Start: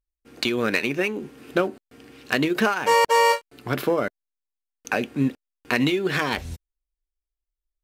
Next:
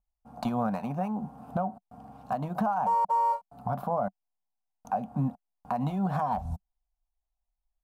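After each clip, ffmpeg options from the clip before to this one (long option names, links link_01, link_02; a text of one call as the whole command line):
ffmpeg -i in.wav -af "firequalizer=gain_entry='entry(140,0);entry(190,7);entry(350,-24);entry(720,12);entry(1900,-26);entry(10000,-16)':delay=0.05:min_phase=1,alimiter=limit=-22dB:level=0:latency=1:release=286,volume=2.5dB" out.wav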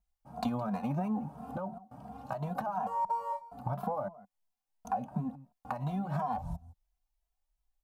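ffmpeg -i in.wav -filter_complex "[0:a]acompressor=threshold=-32dB:ratio=6,aecho=1:1:166:0.106,asplit=2[link_01][link_02];[link_02]adelay=2.6,afreqshift=2.9[link_03];[link_01][link_03]amix=inputs=2:normalize=1,volume=4.5dB" out.wav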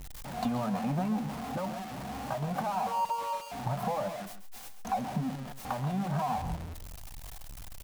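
ffmpeg -i in.wav -filter_complex "[0:a]aeval=exprs='val(0)+0.5*0.015*sgn(val(0))':channel_layout=same,asplit=2[link_01][link_02];[link_02]aecho=0:1:134:0.266[link_03];[link_01][link_03]amix=inputs=2:normalize=0" out.wav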